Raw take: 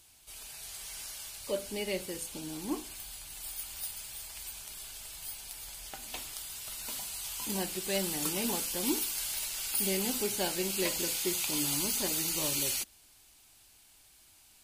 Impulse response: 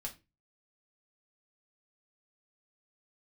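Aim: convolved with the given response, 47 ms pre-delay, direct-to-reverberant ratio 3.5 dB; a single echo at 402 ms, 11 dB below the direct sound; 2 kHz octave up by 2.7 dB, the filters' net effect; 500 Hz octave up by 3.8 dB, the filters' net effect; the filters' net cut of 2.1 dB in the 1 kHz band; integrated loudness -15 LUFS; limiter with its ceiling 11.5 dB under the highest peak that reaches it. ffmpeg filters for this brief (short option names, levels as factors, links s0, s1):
-filter_complex "[0:a]equalizer=f=500:t=o:g=6.5,equalizer=f=1000:t=o:g=-6.5,equalizer=f=2000:t=o:g=4.5,alimiter=level_in=1.19:limit=0.0631:level=0:latency=1,volume=0.841,aecho=1:1:402:0.282,asplit=2[s0][s1];[1:a]atrim=start_sample=2205,adelay=47[s2];[s1][s2]afir=irnorm=-1:irlink=0,volume=0.794[s3];[s0][s3]amix=inputs=2:normalize=0,volume=8.91"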